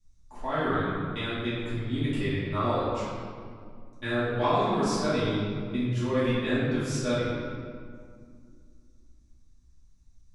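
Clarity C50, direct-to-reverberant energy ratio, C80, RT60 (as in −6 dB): −2.5 dB, −13.5 dB, 0.0 dB, 2.2 s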